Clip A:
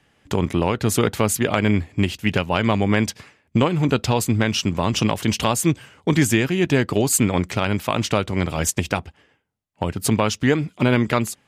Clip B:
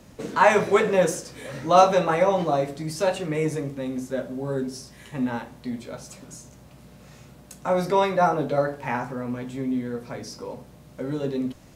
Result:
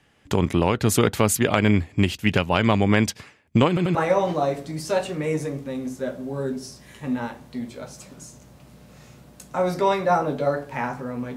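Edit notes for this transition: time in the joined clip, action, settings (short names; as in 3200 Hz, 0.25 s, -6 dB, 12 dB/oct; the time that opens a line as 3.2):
clip A
3.68 stutter in place 0.09 s, 3 plays
3.95 switch to clip B from 2.06 s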